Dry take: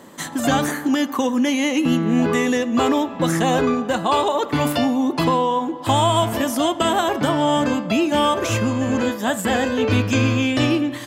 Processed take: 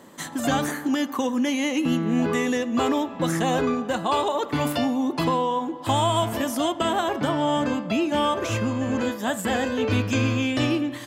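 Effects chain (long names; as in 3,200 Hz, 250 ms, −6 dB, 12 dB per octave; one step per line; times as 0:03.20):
0:06.72–0:09.01: high-shelf EQ 6,500 Hz −5.5 dB
level −4.5 dB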